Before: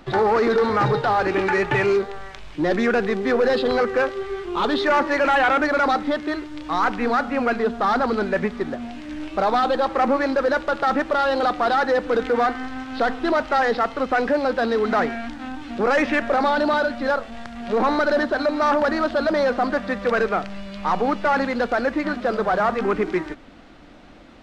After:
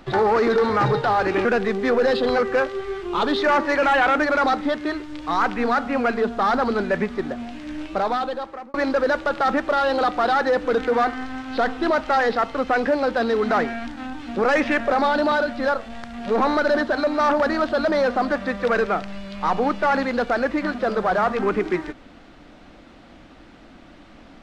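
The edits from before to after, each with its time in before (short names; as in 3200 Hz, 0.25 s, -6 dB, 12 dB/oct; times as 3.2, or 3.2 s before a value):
1.45–2.87 cut
9.24–10.16 fade out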